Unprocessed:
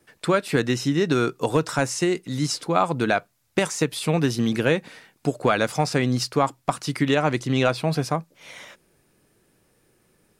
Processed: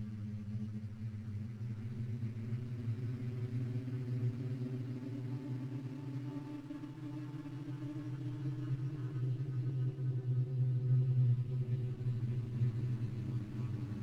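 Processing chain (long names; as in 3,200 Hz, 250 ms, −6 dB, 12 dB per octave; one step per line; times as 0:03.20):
power curve on the samples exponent 0.5
parametric band 510 Hz +12.5 dB 1.5 octaves
leveller curve on the samples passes 2
extreme stretch with random phases 50×, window 0.10 s, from 0:00.92
guitar amp tone stack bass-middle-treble 10-0-1
tuned comb filter 170 Hz, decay 0.17 s, harmonics odd, mix 90%
convolution reverb RT60 4.4 s, pre-delay 75 ms, DRR 7 dB
wrong playback speed 45 rpm record played at 33 rpm
windowed peak hold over 17 samples
level −7 dB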